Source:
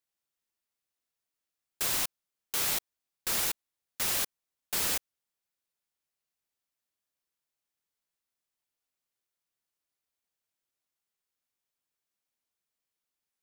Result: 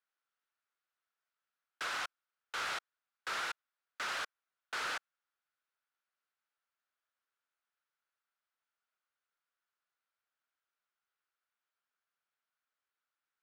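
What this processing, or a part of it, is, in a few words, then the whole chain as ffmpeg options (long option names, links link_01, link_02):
intercom: -af "highpass=490,lowpass=3600,equalizer=frequency=1400:width_type=o:width=0.58:gain=11.5,asoftclip=type=tanh:threshold=-30dB,volume=-1.5dB"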